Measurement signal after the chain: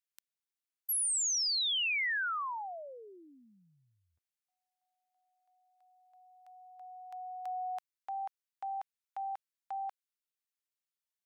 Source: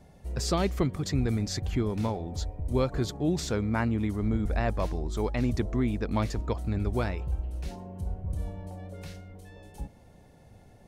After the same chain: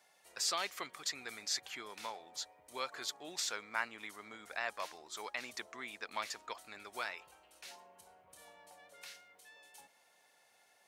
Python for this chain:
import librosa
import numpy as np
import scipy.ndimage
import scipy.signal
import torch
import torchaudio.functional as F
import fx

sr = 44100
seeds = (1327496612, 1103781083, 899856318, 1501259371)

y = scipy.signal.sosfilt(scipy.signal.butter(2, 1300.0, 'highpass', fs=sr, output='sos'), x)